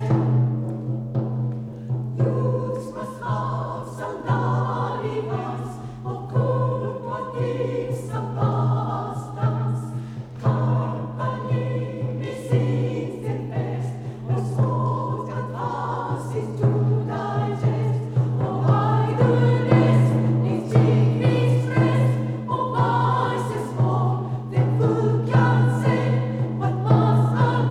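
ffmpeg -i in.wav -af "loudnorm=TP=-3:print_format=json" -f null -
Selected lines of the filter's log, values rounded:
"input_i" : "-22.4",
"input_tp" : "-4.4",
"input_lra" : "6.7",
"input_thresh" : "-32.5",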